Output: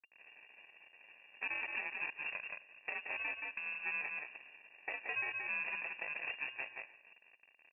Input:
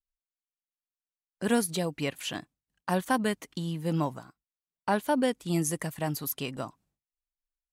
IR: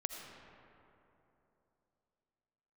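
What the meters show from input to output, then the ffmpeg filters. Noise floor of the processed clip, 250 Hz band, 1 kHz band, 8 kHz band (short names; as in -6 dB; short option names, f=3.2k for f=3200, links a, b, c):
-67 dBFS, -34.0 dB, -16.0 dB, under -40 dB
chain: -filter_complex "[0:a]aeval=exprs='val(0)+0.5*0.00794*sgn(val(0))':c=same,highpass=200,acrusher=samples=30:mix=1:aa=0.000001,alimiter=limit=-22dB:level=0:latency=1:release=62,acrusher=bits=7:mix=0:aa=0.000001,asuperstop=centerf=640:order=4:qfactor=2,asplit=2[a][b];[b]aecho=0:1:95|190|285|380|475:0.133|0.0773|0.0449|0.026|0.0151[c];[a][c]amix=inputs=2:normalize=0,asoftclip=type=tanh:threshold=-26.5dB,aeval=exprs='0.0473*(cos(1*acos(clip(val(0)/0.0473,-1,1)))-cos(1*PI/2))+0.0133*(cos(3*acos(clip(val(0)/0.0473,-1,1)))-cos(3*PI/2))':c=same,asplit=2[d][e];[e]aecho=0:1:174:0.473[f];[d][f]amix=inputs=2:normalize=0,acompressor=threshold=-48dB:ratio=2.5,lowpass=f=2.4k:t=q:w=0.5098,lowpass=f=2.4k:t=q:w=0.6013,lowpass=f=2.4k:t=q:w=0.9,lowpass=f=2.4k:t=q:w=2.563,afreqshift=-2800,volume=7dB"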